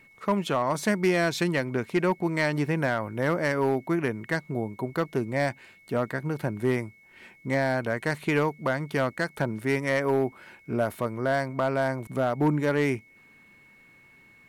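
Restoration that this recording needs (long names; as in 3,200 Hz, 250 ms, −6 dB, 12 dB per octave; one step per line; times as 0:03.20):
clipped peaks rebuilt −16 dBFS
notch filter 2,200 Hz, Q 30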